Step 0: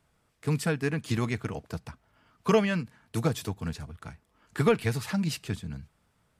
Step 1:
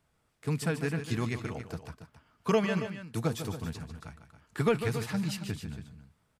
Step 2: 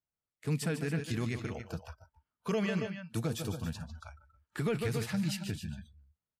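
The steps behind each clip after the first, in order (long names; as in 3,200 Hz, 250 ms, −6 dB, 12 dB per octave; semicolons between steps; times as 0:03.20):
loudspeakers that aren't time-aligned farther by 51 metres −10 dB, 95 metres −12 dB; level −3.5 dB
noise reduction from a noise print of the clip's start 25 dB; dynamic equaliser 1,000 Hz, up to −6 dB, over −50 dBFS, Q 1.7; brickwall limiter −23 dBFS, peak gain reduction 8 dB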